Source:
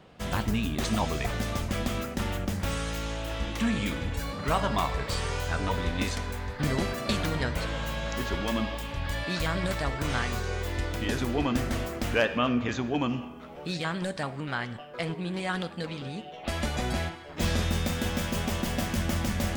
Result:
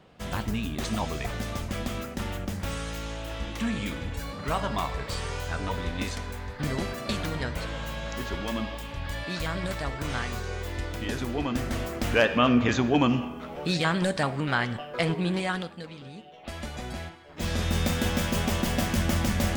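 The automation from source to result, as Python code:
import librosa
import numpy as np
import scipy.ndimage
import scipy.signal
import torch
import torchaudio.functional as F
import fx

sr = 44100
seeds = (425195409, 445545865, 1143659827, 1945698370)

y = fx.gain(x, sr, db=fx.line((11.5, -2.0), (12.62, 6.0), (15.3, 6.0), (15.86, -6.5), (17.24, -6.5), (17.83, 3.0)))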